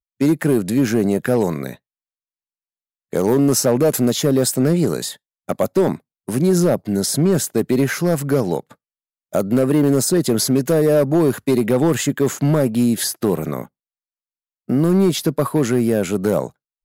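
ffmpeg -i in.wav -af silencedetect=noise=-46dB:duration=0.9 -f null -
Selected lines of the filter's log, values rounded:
silence_start: 1.77
silence_end: 3.13 | silence_duration: 1.36
silence_start: 13.67
silence_end: 14.68 | silence_duration: 1.01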